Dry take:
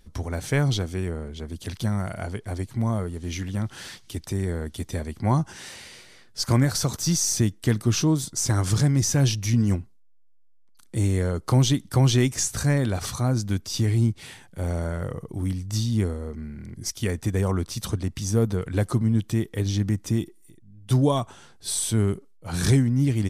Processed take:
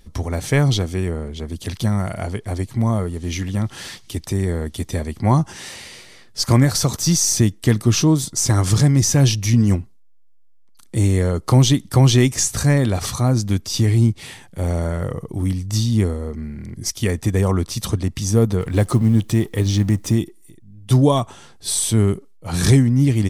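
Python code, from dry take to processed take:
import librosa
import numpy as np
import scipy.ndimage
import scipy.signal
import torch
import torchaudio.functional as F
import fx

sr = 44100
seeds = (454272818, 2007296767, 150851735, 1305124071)

y = fx.law_mismatch(x, sr, coded='mu', at=(18.6, 20.15))
y = fx.notch(y, sr, hz=1500.0, q=11.0)
y = y * 10.0 ** (6.0 / 20.0)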